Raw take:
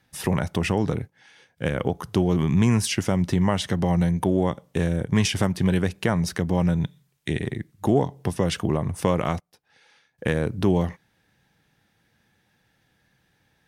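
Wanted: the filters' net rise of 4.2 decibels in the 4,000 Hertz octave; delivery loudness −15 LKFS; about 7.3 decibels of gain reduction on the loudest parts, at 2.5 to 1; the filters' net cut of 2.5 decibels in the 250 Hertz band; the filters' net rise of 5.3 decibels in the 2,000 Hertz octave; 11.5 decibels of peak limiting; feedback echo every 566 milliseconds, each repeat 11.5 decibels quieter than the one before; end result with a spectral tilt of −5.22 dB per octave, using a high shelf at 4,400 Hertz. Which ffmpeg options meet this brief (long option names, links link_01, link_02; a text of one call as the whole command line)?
ffmpeg -i in.wav -af "equalizer=frequency=250:width_type=o:gain=-4,equalizer=frequency=2000:width_type=o:gain=6,equalizer=frequency=4000:width_type=o:gain=6,highshelf=frequency=4400:gain=-5,acompressor=threshold=-28dB:ratio=2.5,alimiter=limit=-21.5dB:level=0:latency=1,aecho=1:1:566|1132|1698:0.266|0.0718|0.0194,volume=19dB" out.wav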